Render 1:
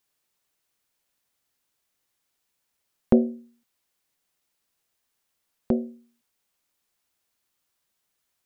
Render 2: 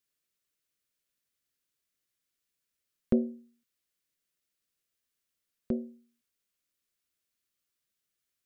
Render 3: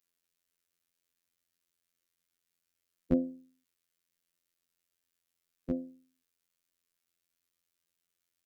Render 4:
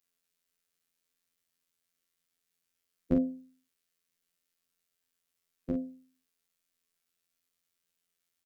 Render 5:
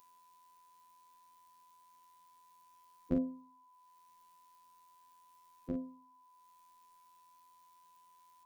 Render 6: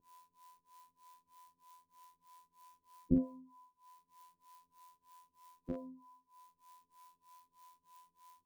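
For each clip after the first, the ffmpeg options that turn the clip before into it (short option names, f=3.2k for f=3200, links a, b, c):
-af "equalizer=f=840:w=2.5:g=-14,volume=-7dB"
-af "afftfilt=real='hypot(re,im)*cos(PI*b)':imag='0':win_size=2048:overlap=0.75,volume=3.5dB"
-filter_complex "[0:a]asplit=2[a][b];[b]adelay=42,volume=-5dB[c];[a][c]amix=inputs=2:normalize=0"
-af "acompressor=mode=upward:threshold=-49dB:ratio=2.5,aeval=exprs='val(0)+0.00158*sin(2*PI*1000*n/s)':c=same,volume=-5.5dB"
-filter_complex "[0:a]acrossover=split=400[a][b];[a]aeval=exprs='val(0)*(1-1/2+1/2*cos(2*PI*3.2*n/s))':c=same[c];[b]aeval=exprs='val(0)*(1-1/2-1/2*cos(2*PI*3.2*n/s))':c=same[d];[c][d]amix=inputs=2:normalize=0,volume=5dB"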